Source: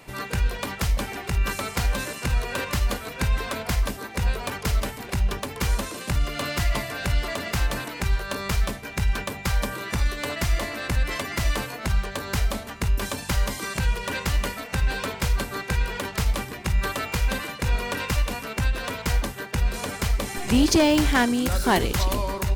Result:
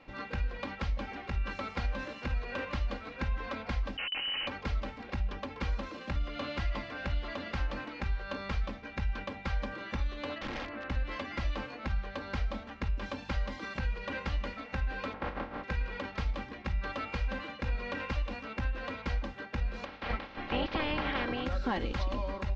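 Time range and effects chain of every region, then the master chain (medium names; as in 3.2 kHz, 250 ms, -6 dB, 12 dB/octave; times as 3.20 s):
3.97–4.47 s: hum notches 60/120/180/240/300 Hz + Schmitt trigger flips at -33 dBFS + frequency inversion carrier 3 kHz
10.38–10.90 s: low-pass 2.4 kHz + integer overflow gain 23.5 dB
15.12–15.63 s: spectral contrast reduction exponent 0.26 + low-pass 1.3 kHz + compressor with a negative ratio -31 dBFS, ratio -0.5
19.84–21.45 s: spectral peaks clipped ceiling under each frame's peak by 24 dB + distance through air 290 m
whole clip: Bessel low-pass 3.1 kHz, order 8; comb 3.7 ms, depth 51%; compression, threshold -19 dBFS; trim -8.5 dB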